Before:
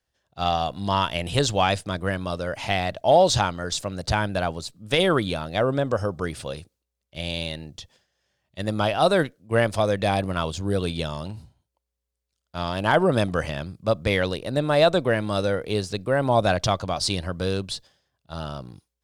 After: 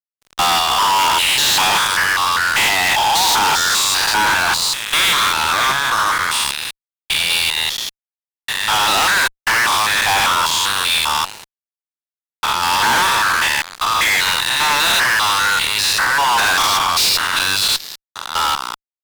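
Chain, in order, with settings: stepped spectrum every 0.2 s; elliptic high-pass 900 Hz, stop band 40 dB; fuzz box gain 47 dB, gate -54 dBFS

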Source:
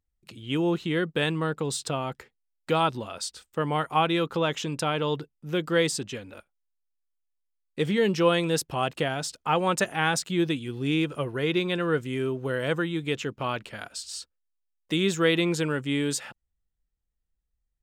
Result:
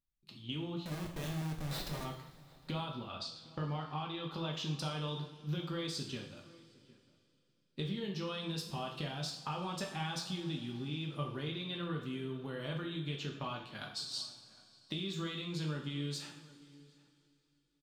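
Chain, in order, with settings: gate -37 dBFS, range -8 dB; graphic EQ 125/250/500/1000/2000/4000/8000 Hz +5/+5/-5/+4/-5/+12/-7 dB; limiter -14 dBFS, peak gain reduction 6 dB; compressor 20:1, threshold -32 dBFS, peak gain reduction 15 dB; resonator 590 Hz, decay 0.44 s, mix 60%; 0.85–2.05 Schmitt trigger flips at -44.5 dBFS; 2.92–4.23 air absorption 99 m; outdoor echo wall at 130 m, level -21 dB; two-slope reverb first 0.57 s, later 3.4 s, from -19 dB, DRR 0 dB; gain +1.5 dB

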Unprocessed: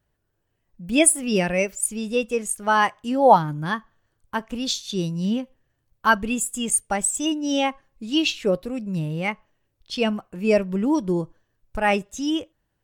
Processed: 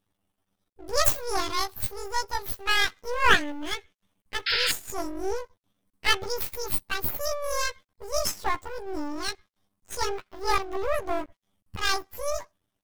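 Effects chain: delay-line pitch shifter +11.5 st; half-wave rectifier; painted sound noise, 4.46–4.72, 1300–5300 Hz -25 dBFS

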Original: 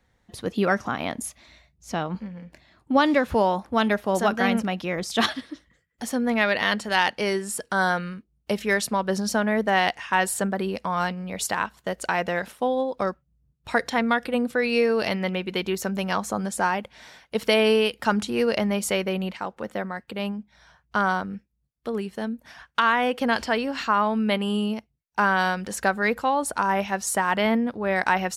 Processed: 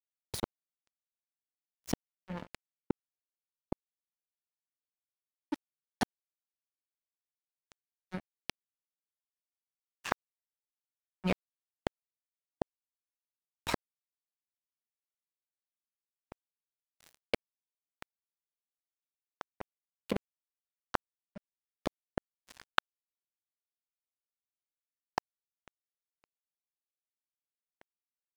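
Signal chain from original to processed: flipped gate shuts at -23 dBFS, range -36 dB; crossover distortion -39 dBFS; gain +9.5 dB

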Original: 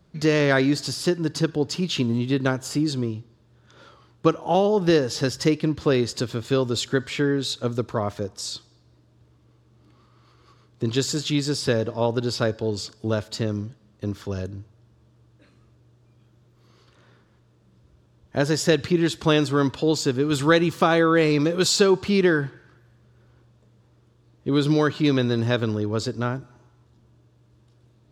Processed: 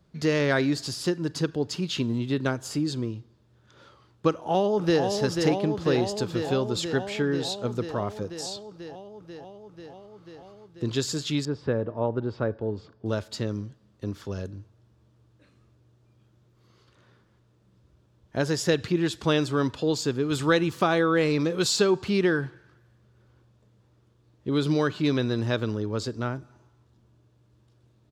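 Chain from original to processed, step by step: 4.3–5.03 echo throw 0.49 s, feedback 80%, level -5 dB; 11.45–13.06 LPF 1500 Hz 12 dB/oct; gain -4 dB

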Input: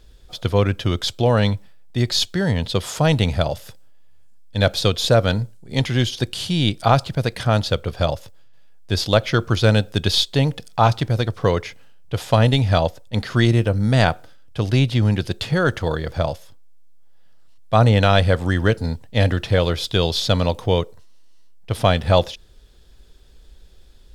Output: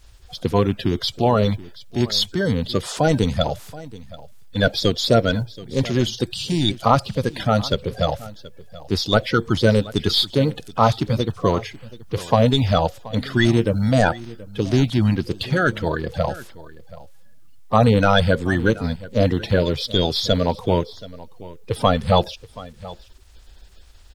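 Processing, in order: bin magnitudes rounded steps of 30 dB; requantised 12-bit, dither triangular; echo 0.728 s -19 dB

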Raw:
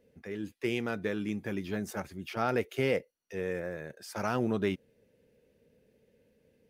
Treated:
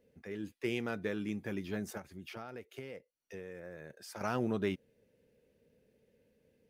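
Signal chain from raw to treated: 1.97–4.21 compressor 8:1, threshold -39 dBFS, peak gain reduction 15 dB; gain -3.5 dB

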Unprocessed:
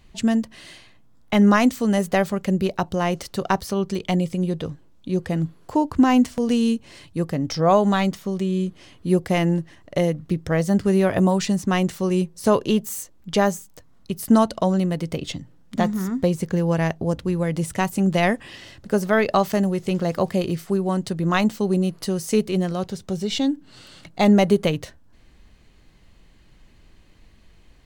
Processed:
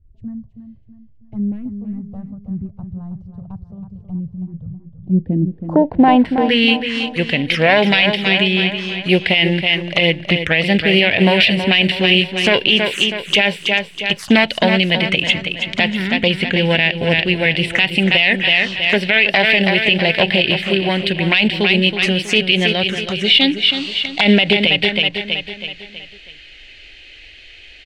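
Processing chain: self-modulated delay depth 0.14 ms; high shelf 3000 Hz +6 dB; in parallel at -10 dB: short-mantissa float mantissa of 2-bit; on the sum: low-pass sweep 110 Hz -> 2700 Hz, 4.79–6.75; envelope phaser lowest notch 160 Hz, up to 1200 Hz, full sweep at -19 dBFS; tilt shelf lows -9 dB, about 730 Hz; on a send: feedback echo 0.323 s, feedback 46%, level -9 dB; on the sum: maximiser +9.5 dB; gain -1 dB

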